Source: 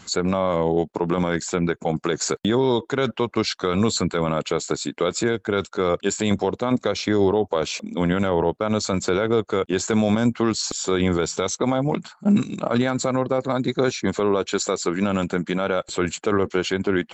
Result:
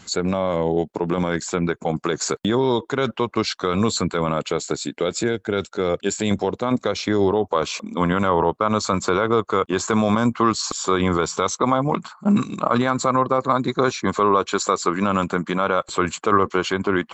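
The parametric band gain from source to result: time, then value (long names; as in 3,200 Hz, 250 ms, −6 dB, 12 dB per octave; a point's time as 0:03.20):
parametric band 1,100 Hz 0.48 octaves
0:01.04 −2.5 dB
0:01.47 +4 dB
0:04.29 +4 dB
0:04.94 −5.5 dB
0:06.08 −5.5 dB
0:06.66 +3 dB
0:07.25 +3 dB
0:07.84 +13.5 dB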